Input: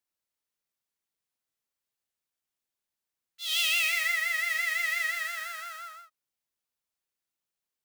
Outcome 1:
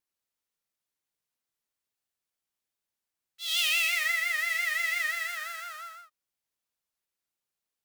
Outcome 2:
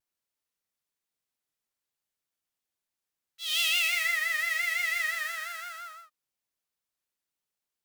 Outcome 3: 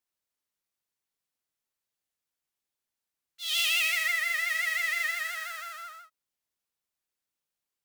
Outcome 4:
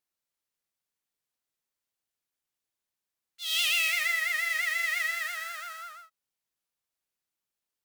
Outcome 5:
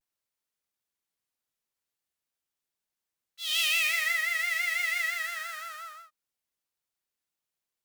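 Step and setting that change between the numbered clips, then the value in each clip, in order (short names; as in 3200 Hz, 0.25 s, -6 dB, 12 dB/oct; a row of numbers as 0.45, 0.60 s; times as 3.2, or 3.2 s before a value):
vibrato, rate: 2.9, 1.1, 13, 8.9, 0.47 Hz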